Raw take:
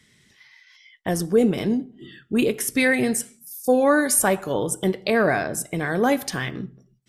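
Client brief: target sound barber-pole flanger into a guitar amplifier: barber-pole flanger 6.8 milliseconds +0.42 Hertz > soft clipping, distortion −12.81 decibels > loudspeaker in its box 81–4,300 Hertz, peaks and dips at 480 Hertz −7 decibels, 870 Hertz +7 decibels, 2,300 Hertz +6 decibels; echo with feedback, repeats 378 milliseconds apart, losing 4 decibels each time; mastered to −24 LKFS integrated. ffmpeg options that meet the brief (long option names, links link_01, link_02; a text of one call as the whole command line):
ffmpeg -i in.wav -filter_complex "[0:a]aecho=1:1:378|756|1134|1512|1890|2268|2646|3024|3402:0.631|0.398|0.25|0.158|0.0994|0.0626|0.0394|0.0249|0.0157,asplit=2[link_01][link_02];[link_02]adelay=6.8,afreqshift=0.42[link_03];[link_01][link_03]amix=inputs=2:normalize=1,asoftclip=threshold=-18.5dB,highpass=81,equalizer=frequency=480:width_type=q:width=4:gain=-7,equalizer=frequency=870:width_type=q:width=4:gain=7,equalizer=frequency=2300:width_type=q:width=4:gain=6,lowpass=frequency=4300:width=0.5412,lowpass=frequency=4300:width=1.3066,volume=2.5dB" out.wav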